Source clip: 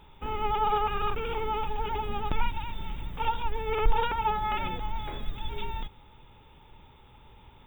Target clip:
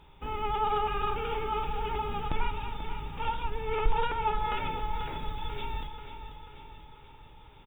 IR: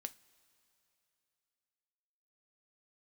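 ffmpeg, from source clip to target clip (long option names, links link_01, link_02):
-filter_complex "[0:a]asettb=1/sr,asplit=3[link_01][link_02][link_03];[link_01]atrim=end=2.274[link_04];[link_02]atrim=start=2.27:end=4.4,asetpts=PTS-STARTPTS,afade=type=in:duration=0.004:curve=qsin,afade=type=out:start_time=2.126:duration=0.004:curve=qsin,highshelf=frequency=5100:gain=-4.5[link_05];[link_03]atrim=start=4.396[link_06];[link_04][link_05]acrossfade=duration=0.004:curve1=hsin:curve2=qsin[link_07];[link_07][link_06]acrossfade=duration=0.004:curve1=qsin:curve2=hsin,aecho=1:1:488|976|1464|1952|2440|2928|3416:0.316|0.18|0.103|0.0586|0.0334|0.019|0.0108[link_08];[1:a]atrim=start_sample=2205,asetrate=29988,aresample=44100[link_09];[link_08][link_09]afir=irnorm=-1:irlink=0"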